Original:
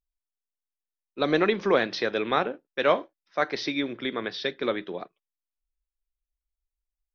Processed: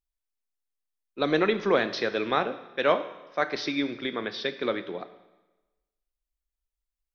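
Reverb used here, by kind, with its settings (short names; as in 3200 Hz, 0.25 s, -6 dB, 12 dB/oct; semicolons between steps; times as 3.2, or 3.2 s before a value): Schroeder reverb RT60 1.1 s, combs from 25 ms, DRR 12 dB; gain -1 dB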